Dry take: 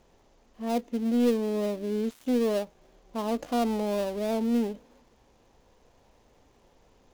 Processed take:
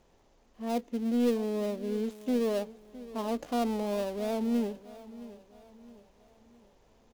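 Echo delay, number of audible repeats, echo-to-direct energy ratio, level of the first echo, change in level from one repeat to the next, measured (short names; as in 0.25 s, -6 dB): 0.664 s, 3, -16.0 dB, -17.0 dB, -7.5 dB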